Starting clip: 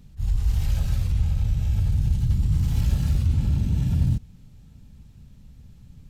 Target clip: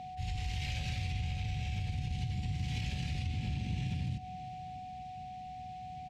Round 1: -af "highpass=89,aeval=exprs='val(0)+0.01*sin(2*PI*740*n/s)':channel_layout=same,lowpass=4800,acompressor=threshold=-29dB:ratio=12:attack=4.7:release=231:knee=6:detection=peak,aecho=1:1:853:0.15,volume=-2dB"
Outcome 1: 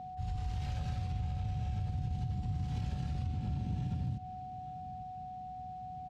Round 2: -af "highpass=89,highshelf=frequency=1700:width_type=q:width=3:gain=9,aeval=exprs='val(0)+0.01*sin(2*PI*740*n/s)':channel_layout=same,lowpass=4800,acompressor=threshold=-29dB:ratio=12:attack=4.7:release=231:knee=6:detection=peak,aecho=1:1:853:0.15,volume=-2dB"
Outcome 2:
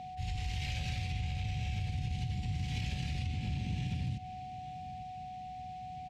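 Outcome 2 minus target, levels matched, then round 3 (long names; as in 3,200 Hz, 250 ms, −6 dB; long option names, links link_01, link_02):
echo 235 ms late
-af "highpass=89,highshelf=frequency=1700:width_type=q:width=3:gain=9,aeval=exprs='val(0)+0.01*sin(2*PI*740*n/s)':channel_layout=same,lowpass=4800,acompressor=threshold=-29dB:ratio=12:attack=4.7:release=231:knee=6:detection=peak,aecho=1:1:618:0.15,volume=-2dB"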